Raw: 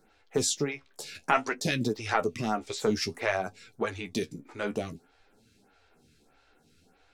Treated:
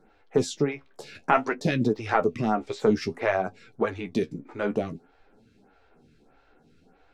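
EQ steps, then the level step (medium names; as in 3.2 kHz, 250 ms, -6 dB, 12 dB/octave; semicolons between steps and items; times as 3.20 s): low-pass 1.2 kHz 6 dB/octave; peaking EQ 84 Hz -6 dB 0.62 oct; +6.0 dB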